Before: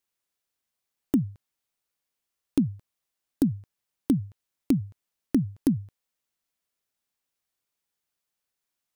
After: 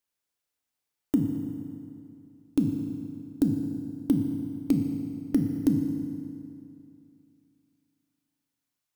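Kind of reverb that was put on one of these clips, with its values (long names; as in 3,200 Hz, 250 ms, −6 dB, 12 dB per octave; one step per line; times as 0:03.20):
feedback delay network reverb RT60 2.6 s, high-frequency decay 0.75×, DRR 3 dB
level −2.5 dB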